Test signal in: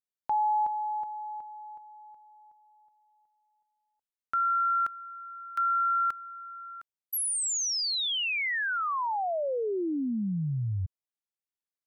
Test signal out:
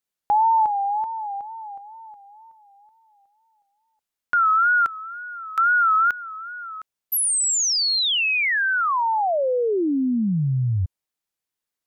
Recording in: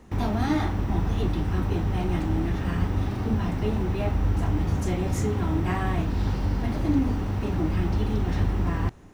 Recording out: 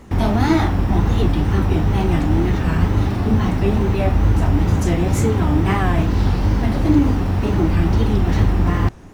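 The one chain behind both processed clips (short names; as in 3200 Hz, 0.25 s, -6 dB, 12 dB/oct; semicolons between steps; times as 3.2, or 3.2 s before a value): wow and flutter 110 cents; gain +8.5 dB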